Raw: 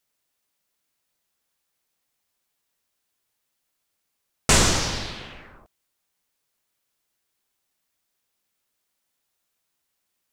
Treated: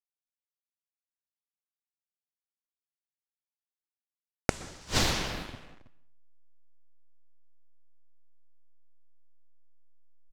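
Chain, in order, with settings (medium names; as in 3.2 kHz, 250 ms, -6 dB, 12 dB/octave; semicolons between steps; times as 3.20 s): send-on-delta sampling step -39 dBFS; level-controlled noise filter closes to 2.7 kHz, open at -26.5 dBFS; delay 320 ms -14.5 dB; inverted gate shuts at -13 dBFS, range -33 dB; reverberation, pre-delay 115 ms, DRR 17.5 dB; trim +5 dB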